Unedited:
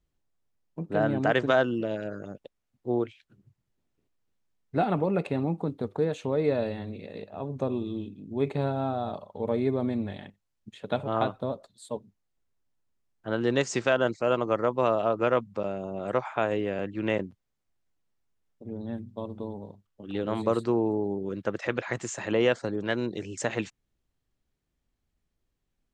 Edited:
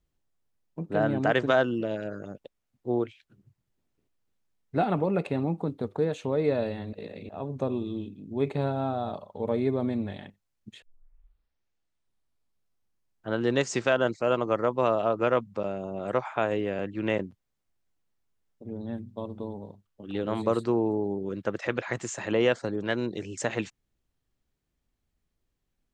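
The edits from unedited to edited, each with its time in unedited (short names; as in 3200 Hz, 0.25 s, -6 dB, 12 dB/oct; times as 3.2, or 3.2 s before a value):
6.93–7.29 reverse
10.82 tape start 2.46 s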